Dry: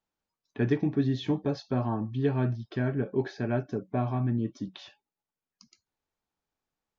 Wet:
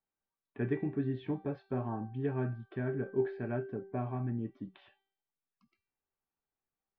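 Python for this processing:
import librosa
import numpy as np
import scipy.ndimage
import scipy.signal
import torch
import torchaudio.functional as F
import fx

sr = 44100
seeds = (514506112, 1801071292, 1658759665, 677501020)

y = scipy.signal.sosfilt(scipy.signal.butter(4, 2600.0, 'lowpass', fs=sr, output='sos'), x)
y = fx.comb_fb(y, sr, f0_hz=390.0, decay_s=0.63, harmonics='all', damping=0.0, mix_pct=80)
y = F.gain(torch.from_numpy(y), 6.0).numpy()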